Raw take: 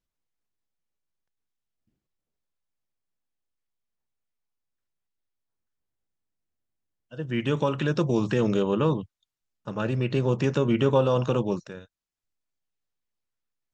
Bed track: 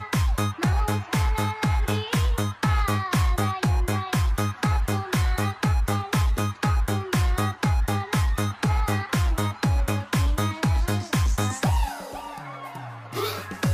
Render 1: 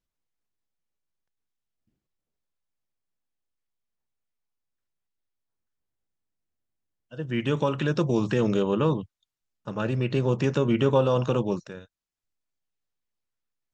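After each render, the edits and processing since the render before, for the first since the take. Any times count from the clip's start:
no processing that can be heard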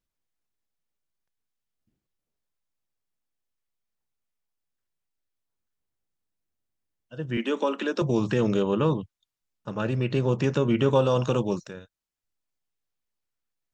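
0:07.37–0:08.02: Butterworth high-pass 210 Hz 72 dB per octave
0:10.88–0:11.71: high-shelf EQ 6,100 Hz +10.5 dB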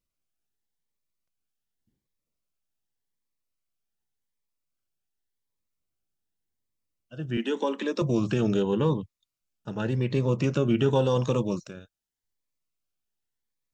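floating-point word with a short mantissa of 8 bits
phaser whose notches keep moving one way rising 0.87 Hz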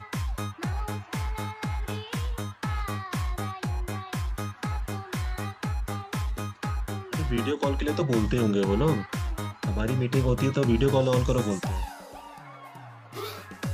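mix in bed track −8 dB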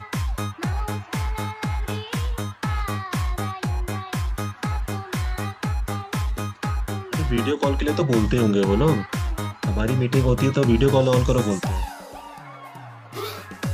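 level +5 dB

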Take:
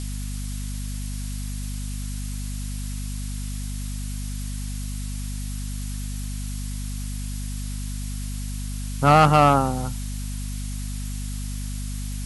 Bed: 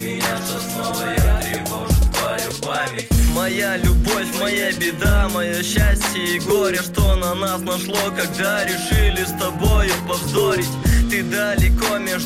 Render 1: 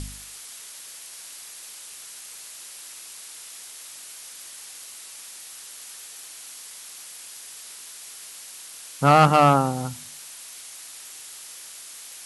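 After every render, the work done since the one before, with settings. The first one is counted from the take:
hum removal 50 Hz, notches 5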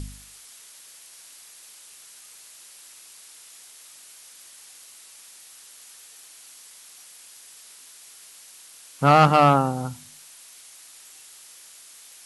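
noise reduction from a noise print 6 dB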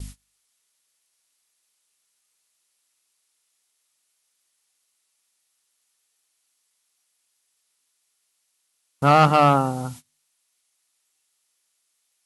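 notch filter 1,600 Hz, Q 24
noise gate −38 dBFS, range −25 dB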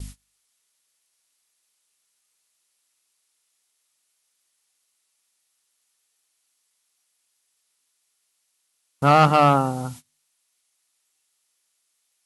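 no processing that can be heard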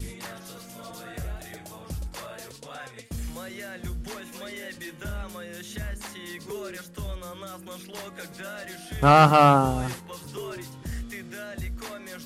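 mix in bed −18.5 dB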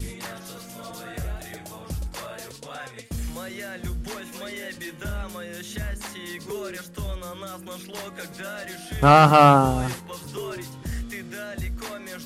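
level +3 dB
brickwall limiter −3 dBFS, peak gain reduction 2.5 dB

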